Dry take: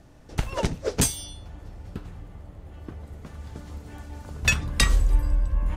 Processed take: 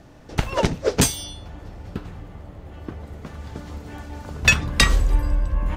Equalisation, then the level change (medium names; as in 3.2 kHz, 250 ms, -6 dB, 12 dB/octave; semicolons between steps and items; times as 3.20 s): bass shelf 100 Hz -6.5 dB; peaking EQ 10 kHz -6.5 dB 1.1 oct; +7.0 dB